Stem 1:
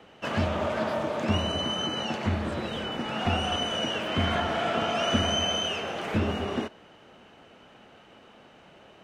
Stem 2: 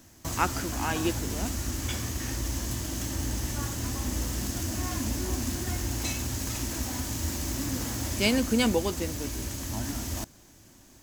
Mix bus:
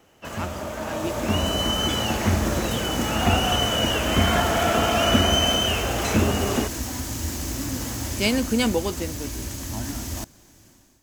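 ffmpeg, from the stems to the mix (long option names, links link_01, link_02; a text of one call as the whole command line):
ffmpeg -i stem1.wav -i stem2.wav -filter_complex "[0:a]volume=-6dB[link_01];[1:a]volume=-9.5dB[link_02];[link_01][link_02]amix=inputs=2:normalize=0,dynaudnorm=framelen=820:gausssize=3:maxgain=12dB" out.wav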